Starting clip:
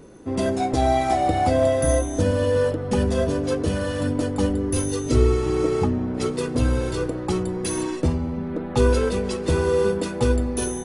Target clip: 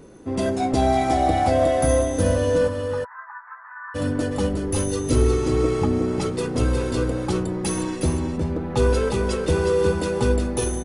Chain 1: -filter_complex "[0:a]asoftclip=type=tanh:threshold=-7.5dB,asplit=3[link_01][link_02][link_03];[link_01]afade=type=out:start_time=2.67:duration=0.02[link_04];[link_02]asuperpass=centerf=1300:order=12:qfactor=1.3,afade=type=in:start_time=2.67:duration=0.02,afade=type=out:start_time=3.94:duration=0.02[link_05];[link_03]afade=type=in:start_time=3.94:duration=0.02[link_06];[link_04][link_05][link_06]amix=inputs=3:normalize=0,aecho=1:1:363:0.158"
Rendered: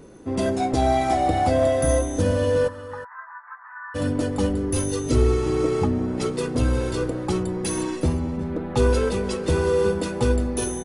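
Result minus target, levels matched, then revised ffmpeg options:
echo-to-direct −10.5 dB
-filter_complex "[0:a]asoftclip=type=tanh:threshold=-7.5dB,asplit=3[link_01][link_02][link_03];[link_01]afade=type=out:start_time=2.67:duration=0.02[link_04];[link_02]asuperpass=centerf=1300:order=12:qfactor=1.3,afade=type=in:start_time=2.67:duration=0.02,afade=type=out:start_time=3.94:duration=0.02[link_05];[link_03]afade=type=in:start_time=3.94:duration=0.02[link_06];[link_04][link_05][link_06]amix=inputs=3:normalize=0,aecho=1:1:363:0.531"

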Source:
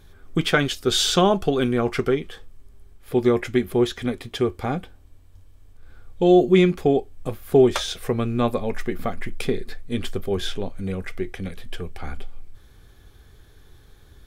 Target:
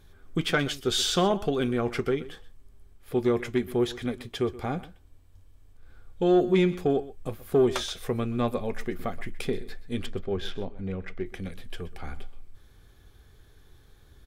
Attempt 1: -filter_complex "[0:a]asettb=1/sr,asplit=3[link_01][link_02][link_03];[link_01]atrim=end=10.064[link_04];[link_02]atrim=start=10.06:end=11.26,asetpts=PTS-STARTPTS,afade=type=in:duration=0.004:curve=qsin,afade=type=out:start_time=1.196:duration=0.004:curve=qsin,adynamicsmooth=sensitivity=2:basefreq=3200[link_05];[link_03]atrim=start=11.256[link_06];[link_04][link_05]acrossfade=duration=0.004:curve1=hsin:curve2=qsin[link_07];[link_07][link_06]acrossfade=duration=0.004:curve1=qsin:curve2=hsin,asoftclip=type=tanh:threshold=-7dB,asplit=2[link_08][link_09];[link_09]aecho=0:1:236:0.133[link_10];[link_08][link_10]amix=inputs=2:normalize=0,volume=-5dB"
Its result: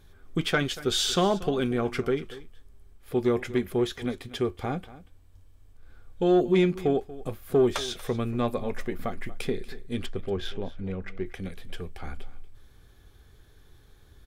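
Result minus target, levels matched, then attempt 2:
echo 110 ms late
-filter_complex "[0:a]asettb=1/sr,asplit=3[link_01][link_02][link_03];[link_01]atrim=end=10.064[link_04];[link_02]atrim=start=10.06:end=11.26,asetpts=PTS-STARTPTS,afade=type=in:duration=0.004:curve=qsin,afade=type=out:start_time=1.196:duration=0.004:curve=qsin,adynamicsmooth=sensitivity=2:basefreq=3200[link_05];[link_03]atrim=start=11.256[link_06];[link_04][link_05]acrossfade=duration=0.004:curve1=hsin:curve2=qsin[link_07];[link_07][link_06]acrossfade=duration=0.004:curve1=qsin:curve2=hsin,asoftclip=type=tanh:threshold=-7dB,asplit=2[link_08][link_09];[link_09]aecho=0:1:126:0.133[link_10];[link_08][link_10]amix=inputs=2:normalize=0,volume=-5dB"

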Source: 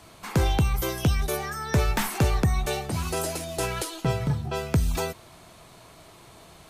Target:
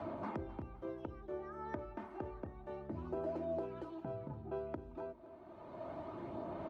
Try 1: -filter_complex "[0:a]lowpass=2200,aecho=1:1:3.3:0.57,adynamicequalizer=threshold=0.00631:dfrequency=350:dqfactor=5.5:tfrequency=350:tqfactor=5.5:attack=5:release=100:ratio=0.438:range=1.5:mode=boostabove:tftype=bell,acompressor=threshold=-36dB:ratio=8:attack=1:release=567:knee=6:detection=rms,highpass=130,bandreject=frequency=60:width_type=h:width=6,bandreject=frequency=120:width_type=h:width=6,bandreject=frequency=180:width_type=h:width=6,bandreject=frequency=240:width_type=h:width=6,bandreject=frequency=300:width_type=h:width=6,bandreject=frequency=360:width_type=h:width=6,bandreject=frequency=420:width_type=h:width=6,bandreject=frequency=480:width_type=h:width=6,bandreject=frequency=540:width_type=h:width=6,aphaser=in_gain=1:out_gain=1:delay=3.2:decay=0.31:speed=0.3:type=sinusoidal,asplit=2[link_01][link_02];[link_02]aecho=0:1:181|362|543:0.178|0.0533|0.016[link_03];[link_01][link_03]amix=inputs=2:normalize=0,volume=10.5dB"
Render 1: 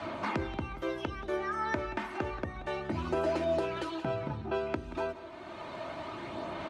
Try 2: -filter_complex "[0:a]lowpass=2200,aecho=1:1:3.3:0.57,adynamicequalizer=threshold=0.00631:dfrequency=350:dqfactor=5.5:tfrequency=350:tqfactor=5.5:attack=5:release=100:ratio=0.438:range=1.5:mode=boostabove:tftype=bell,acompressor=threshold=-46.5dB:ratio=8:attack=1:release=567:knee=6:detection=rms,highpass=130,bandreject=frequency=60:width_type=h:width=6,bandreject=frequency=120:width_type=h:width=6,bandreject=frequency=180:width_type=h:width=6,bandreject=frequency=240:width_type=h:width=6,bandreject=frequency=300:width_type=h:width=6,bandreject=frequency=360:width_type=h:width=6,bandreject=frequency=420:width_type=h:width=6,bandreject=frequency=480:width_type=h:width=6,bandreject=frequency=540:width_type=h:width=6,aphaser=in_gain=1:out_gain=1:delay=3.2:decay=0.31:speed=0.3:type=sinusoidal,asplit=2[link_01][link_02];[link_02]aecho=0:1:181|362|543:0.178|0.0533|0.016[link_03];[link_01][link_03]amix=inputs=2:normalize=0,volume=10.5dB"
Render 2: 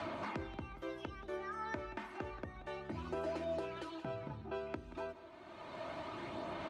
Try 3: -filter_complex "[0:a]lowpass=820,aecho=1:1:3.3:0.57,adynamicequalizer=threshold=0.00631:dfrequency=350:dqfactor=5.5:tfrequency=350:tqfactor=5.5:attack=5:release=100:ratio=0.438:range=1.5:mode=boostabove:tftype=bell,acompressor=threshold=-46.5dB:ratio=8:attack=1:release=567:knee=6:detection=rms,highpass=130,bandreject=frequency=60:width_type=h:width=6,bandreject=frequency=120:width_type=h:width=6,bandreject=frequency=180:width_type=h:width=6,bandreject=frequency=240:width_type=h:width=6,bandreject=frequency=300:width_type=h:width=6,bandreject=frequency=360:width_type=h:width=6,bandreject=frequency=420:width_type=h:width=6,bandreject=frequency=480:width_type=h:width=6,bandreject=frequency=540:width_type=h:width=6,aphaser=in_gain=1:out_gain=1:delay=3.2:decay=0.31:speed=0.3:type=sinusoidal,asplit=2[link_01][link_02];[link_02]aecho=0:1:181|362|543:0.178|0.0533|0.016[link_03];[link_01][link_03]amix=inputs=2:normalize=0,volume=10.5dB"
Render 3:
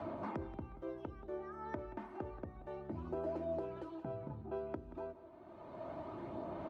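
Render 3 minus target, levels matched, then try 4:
echo 79 ms early
-filter_complex "[0:a]lowpass=820,aecho=1:1:3.3:0.57,adynamicequalizer=threshold=0.00631:dfrequency=350:dqfactor=5.5:tfrequency=350:tqfactor=5.5:attack=5:release=100:ratio=0.438:range=1.5:mode=boostabove:tftype=bell,acompressor=threshold=-46.5dB:ratio=8:attack=1:release=567:knee=6:detection=rms,highpass=130,bandreject=frequency=60:width_type=h:width=6,bandreject=frequency=120:width_type=h:width=6,bandreject=frequency=180:width_type=h:width=6,bandreject=frequency=240:width_type=h:width=6,bandreject=frequency=300:width_type=h:width=6,bandreject=frequency=360:width_type=h:width=6,bandreject=frequency=420:width_type=h:width=6,bandreject=frequency=480:width_type=h:width=6,bandreject=frequency=540:width_type=h:width=6,aphaser=in_gain=1:out_gain=1:delay=3.2:decay=0.31:speed=0.3:type=sinusoidal,asplit=2[link_01][link_02];[link_02]aecho=0:1:260|520|780:0.178|0.0533|0.016[link_03];[link_01][link_03]amix=inputs=2:normalize=0,volume=10.5dB"

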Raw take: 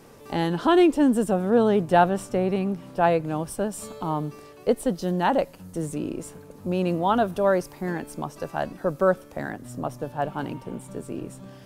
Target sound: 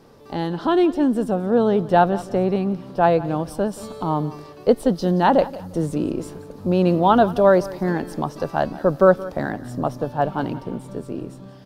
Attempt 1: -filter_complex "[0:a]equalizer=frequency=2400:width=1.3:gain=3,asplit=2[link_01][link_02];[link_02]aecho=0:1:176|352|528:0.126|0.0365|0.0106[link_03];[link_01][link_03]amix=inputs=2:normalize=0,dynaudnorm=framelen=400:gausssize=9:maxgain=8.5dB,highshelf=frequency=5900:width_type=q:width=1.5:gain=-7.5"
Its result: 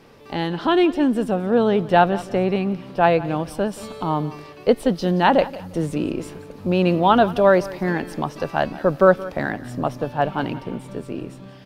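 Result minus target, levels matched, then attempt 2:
2,000 Hz band +4.0 dB
-filter_complex "[0:a]equalizer=frequency=2400:width=1.3:gain=-6.5,asplit=2[link_01][link_02];[link_02]aecho=0:1:176|352|528:0.126|0.0365|0.0106[link_03];[link_01][link_03]amix=inputs=2:normalize=0,dynaudnorm=framelen=400:gausssize=9:maxgain=8.5dB,highshelf=frequency=5900:width_type=q:width=1.5:gain=-7.5"

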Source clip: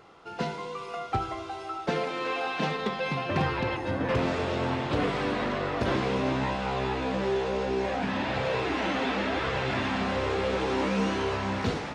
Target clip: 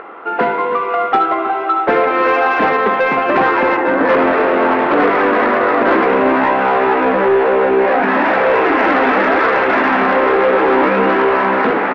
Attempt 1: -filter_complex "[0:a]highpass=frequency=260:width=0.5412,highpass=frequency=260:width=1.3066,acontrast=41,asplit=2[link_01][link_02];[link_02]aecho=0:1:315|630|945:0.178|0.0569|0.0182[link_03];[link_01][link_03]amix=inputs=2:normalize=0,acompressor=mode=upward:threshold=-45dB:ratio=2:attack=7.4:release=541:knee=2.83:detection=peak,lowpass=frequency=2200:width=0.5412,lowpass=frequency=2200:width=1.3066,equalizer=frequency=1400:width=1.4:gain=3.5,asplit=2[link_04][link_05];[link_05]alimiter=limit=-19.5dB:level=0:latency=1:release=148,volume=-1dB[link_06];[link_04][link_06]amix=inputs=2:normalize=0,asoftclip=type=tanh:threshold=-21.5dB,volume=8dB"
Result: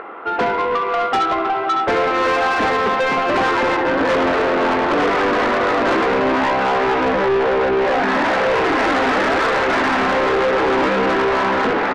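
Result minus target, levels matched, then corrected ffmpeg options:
soft clipping: distortion +11 dB
-filter_complex "[0:a]highpass=frequency=260:width=0.5412,highpass=frequency=260:width=1.3066,acontrast=41,asplit=2[link_01][link_02];[link_02]aecho=0:1:315|630|945:0.178|0.0569|0.0182[link_03];[link_01][link_03]amix=inputs=2:normalize=0,acompressor=mode=upward:threshold=-45dB:ratio=2:attack=7.4:release=541:knee=2.83:detection=peak,lowpass=frequency=2200:width=0.5412,lowpass=frequency=2200:width=1.3066,equalizer=frequency=1400:width=1.4:gain=3.5,asplit=2[link_04][link_05];[link_05]alimiter=limit=-19.5dB:level=0:latency=1:release=148,volume=-1dB[link_06];[link_04][link_06]amix=inputs=2:normalize=0,asoftclip=type=tanh:threshold=-12dB,volume=8dB"

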